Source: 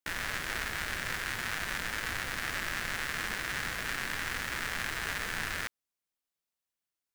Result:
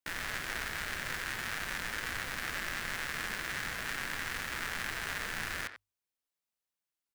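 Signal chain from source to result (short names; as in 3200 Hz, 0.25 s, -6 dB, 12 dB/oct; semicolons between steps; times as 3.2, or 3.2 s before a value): notches 50/100 Hz; short-mantissa float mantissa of 2-bit; speakerphone echo 90 ms, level -9 dB; gain -2.5 dB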